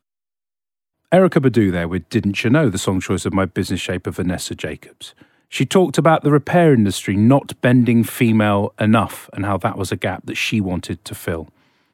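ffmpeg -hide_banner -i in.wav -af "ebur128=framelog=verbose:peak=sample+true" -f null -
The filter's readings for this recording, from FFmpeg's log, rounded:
Integrated loudness:
  I:         -17.4 LUFS
  Threshold: -27.9 LUFS
Loudness range:
  LRA:         5.9 LU
  Threshold: -37.7 LUFS
  LRA low:   -21.1 LUFS
  LRA high:  -15.2 LUFS
Sample peak:
  Peak:       -1.4 dBFS
True peak:
  Peak:       -1.4 dBFS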